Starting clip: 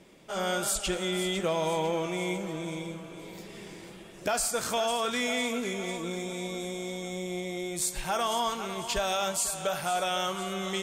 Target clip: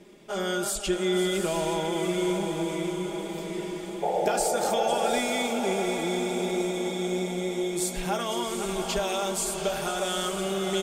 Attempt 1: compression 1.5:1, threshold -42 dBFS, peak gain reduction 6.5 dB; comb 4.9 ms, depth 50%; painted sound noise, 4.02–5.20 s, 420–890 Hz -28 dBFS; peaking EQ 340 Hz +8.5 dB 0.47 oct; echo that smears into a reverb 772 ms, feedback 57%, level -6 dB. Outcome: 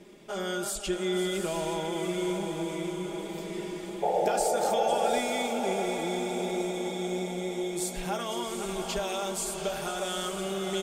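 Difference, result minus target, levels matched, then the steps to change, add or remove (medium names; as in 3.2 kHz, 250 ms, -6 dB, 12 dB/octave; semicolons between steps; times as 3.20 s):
compression: peak gain reduction +3.5 dB
change: compression 1.5:1, threshold -31 dBFS, peak gain reduction 3 dB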